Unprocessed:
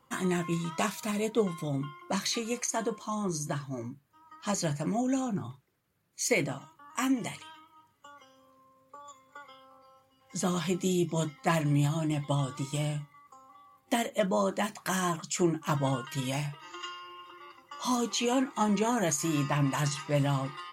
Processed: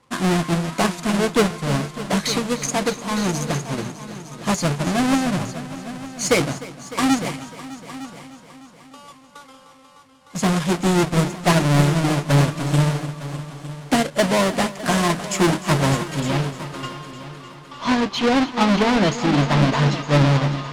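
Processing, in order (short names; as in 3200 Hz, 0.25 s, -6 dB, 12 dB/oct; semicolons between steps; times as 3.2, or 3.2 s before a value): half-waves squared off; LPF 11000 Hz 24 dB/oct, from 16.2 s 5100 Hz; soft clip -19.5 dBFS, distortion -19 dB; multi-head echo 0.303 s, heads all three, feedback 43%, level -13 dB; upward expander 1.5:1, over -36 dBFS; gain +9 dB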